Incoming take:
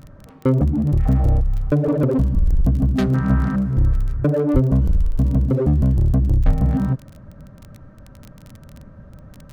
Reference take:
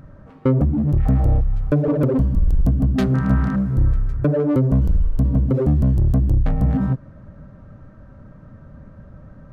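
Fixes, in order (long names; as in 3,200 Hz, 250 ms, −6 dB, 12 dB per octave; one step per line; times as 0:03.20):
click removal
0:04.53–0:04.65: high-pass filter 140 Hz 24 dB per octave
0:06.45–0:06.57: high-pass filter 140 Hz 24 dB per octave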